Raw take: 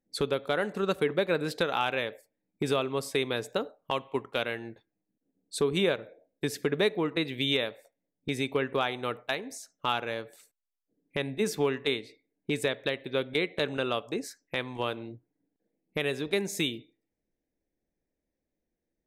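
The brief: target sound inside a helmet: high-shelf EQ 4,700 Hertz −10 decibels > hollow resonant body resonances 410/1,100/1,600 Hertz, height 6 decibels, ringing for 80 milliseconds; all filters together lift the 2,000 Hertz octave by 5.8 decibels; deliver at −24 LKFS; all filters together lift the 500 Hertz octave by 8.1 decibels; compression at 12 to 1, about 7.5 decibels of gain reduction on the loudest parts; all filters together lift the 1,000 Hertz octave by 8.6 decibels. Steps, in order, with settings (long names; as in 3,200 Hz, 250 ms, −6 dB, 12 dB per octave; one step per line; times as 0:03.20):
parametric band 500 Hz +8 dB
parametric band 1,000 Hz +7.5 dB
parametric band 2,000 Hz +6.5 dB
downward compressor 12 to 1, threshold −21 dBFS
high-shelf EQ 4,700 Hz −10 dB
hollow resonant body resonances 410/1,100/1,600 Hz, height 6 dB, ringing for 80 ms
level +3.5 dB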